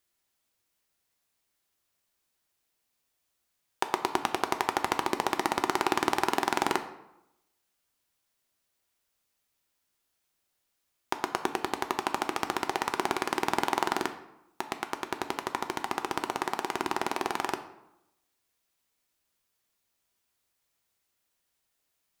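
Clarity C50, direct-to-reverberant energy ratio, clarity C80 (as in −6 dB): 11.5 dB, 7.0 dB, 13.5 dB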